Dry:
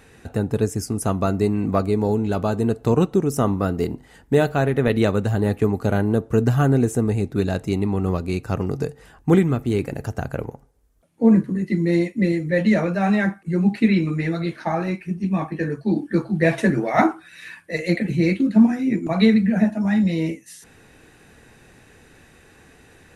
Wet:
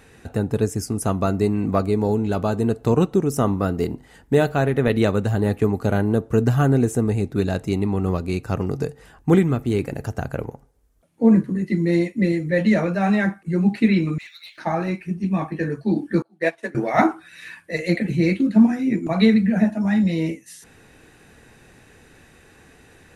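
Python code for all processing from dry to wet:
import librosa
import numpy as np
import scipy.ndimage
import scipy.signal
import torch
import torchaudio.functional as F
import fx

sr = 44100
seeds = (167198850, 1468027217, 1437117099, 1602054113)

y = fx.chain(x, sr, fx.cheby2_highpass(hz=500.0, order=4, stop_db=80),
    fx.air_absorb(metres=160.0),
    fx.leveller(passes=2), at=(14.18, 14.58))
y = fx.chain(y, sr, fx.highpass(hz=380.0, slope=12),
    fx.upward_expand(threshold_db=-32.0, expansion=2.5), at=(16.22, 16.75))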